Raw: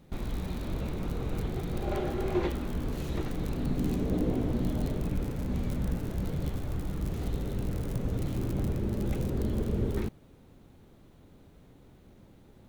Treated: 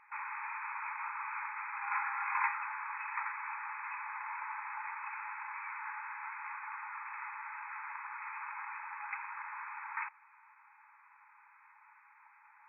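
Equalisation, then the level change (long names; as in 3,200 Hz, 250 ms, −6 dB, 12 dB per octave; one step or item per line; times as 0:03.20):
linear-phase brick-wall band-pass 820–2,600 Hz
+10.5 dB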